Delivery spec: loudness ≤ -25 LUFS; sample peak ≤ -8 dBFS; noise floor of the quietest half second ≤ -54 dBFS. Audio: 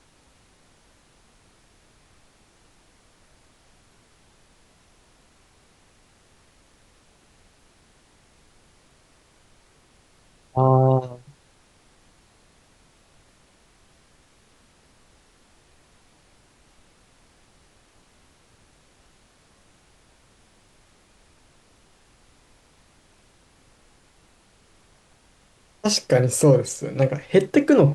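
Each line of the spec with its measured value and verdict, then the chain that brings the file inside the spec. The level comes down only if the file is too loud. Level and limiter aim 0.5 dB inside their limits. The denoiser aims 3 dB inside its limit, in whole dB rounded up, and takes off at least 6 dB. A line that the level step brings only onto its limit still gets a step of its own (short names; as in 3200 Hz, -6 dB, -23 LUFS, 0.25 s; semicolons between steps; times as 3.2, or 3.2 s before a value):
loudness -20.0 LUFS: fail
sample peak -5.5 dBFS: fail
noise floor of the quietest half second -58 dBFS: OK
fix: gain -5.5 dB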